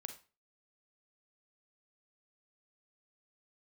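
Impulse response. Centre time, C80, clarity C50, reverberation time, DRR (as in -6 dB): 11 ms, 16.0 dB, 10.0 dB, 0.35 s, 6.5 dB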